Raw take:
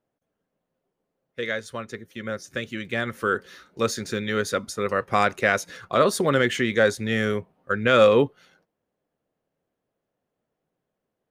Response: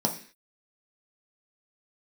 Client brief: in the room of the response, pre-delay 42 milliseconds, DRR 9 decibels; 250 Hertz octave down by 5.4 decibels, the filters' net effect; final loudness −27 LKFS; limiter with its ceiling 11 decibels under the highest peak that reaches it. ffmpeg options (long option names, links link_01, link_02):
-filter_complex "[0:a]equalizer=frequency=250:width_type=o:gain=-7,alimiter=limit=-16dB:level=0:latency=1,asplit=2[link_01][link_02];[1:a]atrim=start_sample=2205,adelay=42[link_03];[link_02][link_03]afir=irnorm=-1:irlink=0,volume=-18dB[link_04];[link_01][link_04]amix=inputs=2:normalize=0,volume=1dB"